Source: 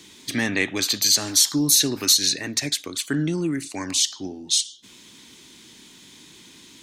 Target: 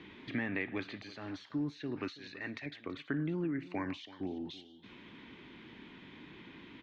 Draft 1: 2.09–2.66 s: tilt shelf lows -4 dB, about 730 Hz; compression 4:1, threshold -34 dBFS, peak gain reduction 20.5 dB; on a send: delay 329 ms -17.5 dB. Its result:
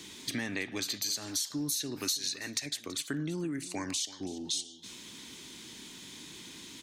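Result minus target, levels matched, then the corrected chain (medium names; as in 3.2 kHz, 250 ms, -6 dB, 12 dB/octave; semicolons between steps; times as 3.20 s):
2 kHz band -4.5 dB
2.09–2.66 s: tilt shelf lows -4 dB, about 730 Hz; compression 4:1, threshold -34 dBFS, peak gain reduction 20.5 dB; low-pass 2.5 kHz 24 dB/octave; on a send: delay 329 ms -17.5 dB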